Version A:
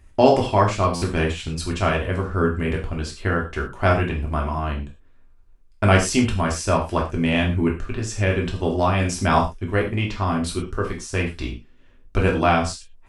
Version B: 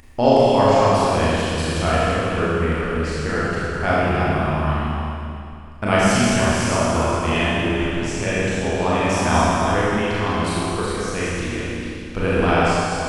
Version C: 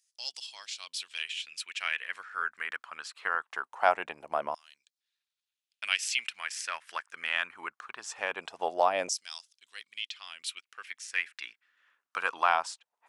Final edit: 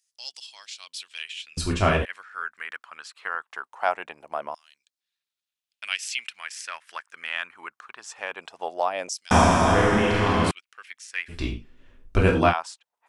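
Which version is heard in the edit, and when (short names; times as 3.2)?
C
1.57–2.05 from A
9.31–10.51 from B
11.31–12.51 from A, crossfade 0.06 s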